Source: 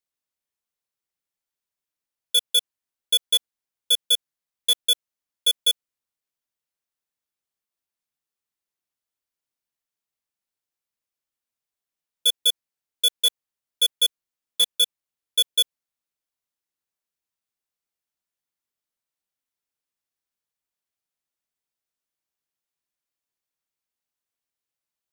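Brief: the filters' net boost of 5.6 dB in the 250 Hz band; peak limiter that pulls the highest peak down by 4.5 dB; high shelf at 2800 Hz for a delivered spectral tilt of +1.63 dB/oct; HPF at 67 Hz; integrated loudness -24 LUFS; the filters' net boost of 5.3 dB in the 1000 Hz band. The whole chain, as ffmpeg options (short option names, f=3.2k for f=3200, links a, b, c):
-af "highpass=67,equalizer=f=250:t=o:g=7,equalizer=f=1k:t=o:g=8.5,highshelf=f=2.8k:g=-7.5,volume=6dB,alimiter=limit=-13.5dB:level=0:latency=1"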